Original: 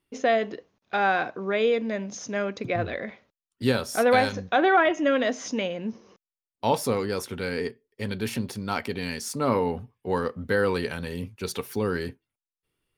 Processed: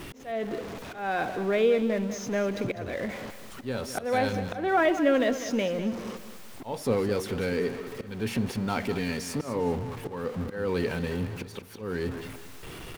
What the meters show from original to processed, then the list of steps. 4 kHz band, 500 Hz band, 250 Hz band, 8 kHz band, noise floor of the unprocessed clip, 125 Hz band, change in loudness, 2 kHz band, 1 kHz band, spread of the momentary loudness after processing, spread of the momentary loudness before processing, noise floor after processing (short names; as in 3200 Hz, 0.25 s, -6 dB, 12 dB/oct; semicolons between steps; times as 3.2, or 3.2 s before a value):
-4.5 dB, -2.0 dB, 0.0 dB, -3.5 dB, under -85 dBFS, 0.0 dB, -2.5 dB, -5.0 dB, -6.0 dB, 16 LU, 13 LU, -43 dBFS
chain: zero-crossing step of -32.5 dBFS; auto swell 0.302 s; high shelf 3500 Hz -9.5 dB; feedback echo 0.2 s, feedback 35%, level -12 dB; dynamic EQ 1200 Hz, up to -4 dB, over -39 dBFS, Q 1.3